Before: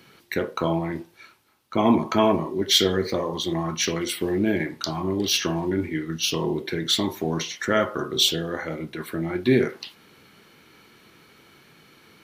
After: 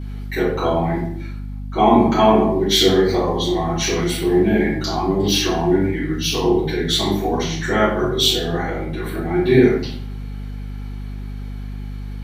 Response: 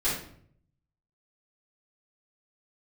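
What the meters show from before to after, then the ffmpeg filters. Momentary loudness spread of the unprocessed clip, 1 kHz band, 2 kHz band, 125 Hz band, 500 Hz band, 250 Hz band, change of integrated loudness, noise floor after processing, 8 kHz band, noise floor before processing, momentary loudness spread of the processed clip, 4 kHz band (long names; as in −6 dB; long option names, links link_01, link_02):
10 LU, +8.5 dB, +4.5 dB, +8.0 dB, +7.5 dB, +6.5 dB, +6.0 dB, −29 dBFS, +2.5 dB, −55 dBFS, 18 LU, +3.5 dB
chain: -filter_complex "[0:a]equalizer=frequency=780:width=4.8:gain=11.5[link_01];[1:a]atrim=start_sample=2205,asetrate=42777,aresample=44100[link_02];[link_01][link_02]afir=irnorm=-1:irlink=0,aeval=exprs='val(0)+0.0794*(sin(2*PI*50*n/s)+sin(2*PI*2*50*n/s)/2+sin(2*PI*3*50*n/s)/3+sin(2*PI*4*50*n/s)/4+sin(2*PI*5*50*n/s)/5)':channel_layout=same,volume=-5.5dB"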